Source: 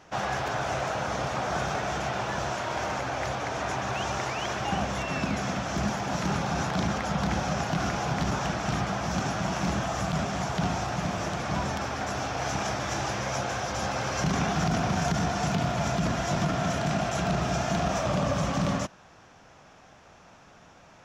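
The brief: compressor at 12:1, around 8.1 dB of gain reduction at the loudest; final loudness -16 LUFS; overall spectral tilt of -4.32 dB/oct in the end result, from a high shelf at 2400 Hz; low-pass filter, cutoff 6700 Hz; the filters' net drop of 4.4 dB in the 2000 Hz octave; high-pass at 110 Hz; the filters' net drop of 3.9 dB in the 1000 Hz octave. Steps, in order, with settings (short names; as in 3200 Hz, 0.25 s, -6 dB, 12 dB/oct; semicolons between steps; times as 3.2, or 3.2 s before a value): HPF 110 Hz; LPF 6700 Hz; bell 1000 Hz -5 dB; bell 2000 Hz -6 dB; high shelf 2400 Hz +4 dB; compressor 12:1, threshold -32 dBFS; gain +20 dB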